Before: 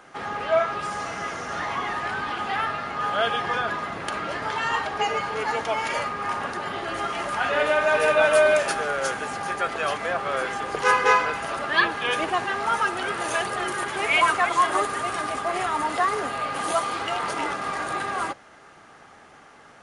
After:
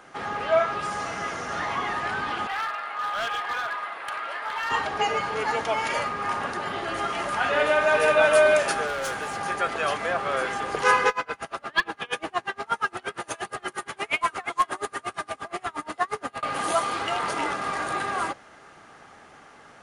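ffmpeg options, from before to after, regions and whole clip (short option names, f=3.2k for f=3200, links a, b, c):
-filter_complex "[0:a]asettb=1/sr,asplit=3[a][b][c];[a]atrim=end=2.474[d];[b]atrim=start=2.47:end=4.71,asetpts=PTS-STARTPTS,afade=t=in:d=0.004:c=qsin,afade=t=out:st=2.236:d=0.004:c=qsin,highpass=830,equalizer=f=6.3k:t=o:w=0.96:g=-13,volume=24.5dB,asoftclip=hard,volume=-24.5dB[e];[c]atrim=start=4.706[f];[d][e]acrossfade=d=0.004:c1=hsin:c2=qsin[g];[g][f]acrossfade=d=0.004:c1=qsin:c2=hsin,asettb=1/sr,asplit=3[h][i][j];[h]atrim=end=8.874[k];[i]atrim=start=8.87:end=9.37,asetpts=PTS-STARTPTS,afade=t=in:d=0.004:c=qsin,afade=t=out:st=0.496:d=0.004:c=qsin,volume=26dB,asoftclip=hard,volume=-26dB,equalizer=f=240:t=o:w=0.37:g=-5.5[l];[j]atrim=start=9.366[m];[k][l]acrossfade=d=0.004:c1=hsin:c2=qsin[n];[n][m]acrossfade=d=0.004:c1=qsin:c2=hsin,asettb=1/sr,asplit=3[o][p][q];[o]atrim=end=11.084[r];[p]atrim=start=11.08:end=16.43,asetpts=PTS-STARTPTS,afade=t=in:d=0.004:c=qsin,afade=t=out:st=5.346:d=0.004:c=qsin,aeval=exprs='clip(val(0),-1,0.211)':c=same,aeval=exprs='val(0)*pow(10,-31*(0.5-0.5*cos(2*PI*8.5*n/s))/20)':c=same[s];[q]atrim=start=16.426[t];[r][s]acrossfade=d=0.004:c1=hsin:c2=qsin[u];[u][t]acrossfade=d=0.004:c1=qsin:c2=hsin"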